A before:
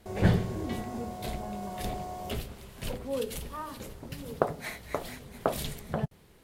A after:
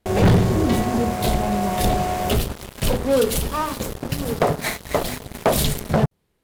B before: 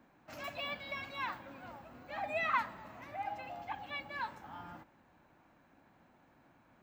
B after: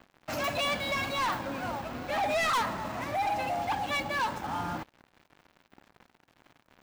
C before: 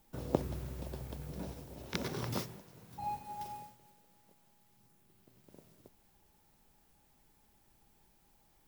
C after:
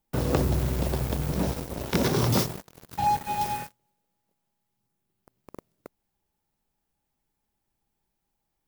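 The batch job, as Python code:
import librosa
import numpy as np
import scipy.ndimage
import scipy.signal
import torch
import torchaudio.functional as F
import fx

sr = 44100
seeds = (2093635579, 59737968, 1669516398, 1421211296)

y = fx.dynamic_eq(x, sr, hz=2100.0, q=1.1, threshold_db=-55.0, ratio=4.0, max_db=-4)
y = fx.leveller(y, sr, passes=5)
y = y * librosa.db_to_amplitude(-2.0)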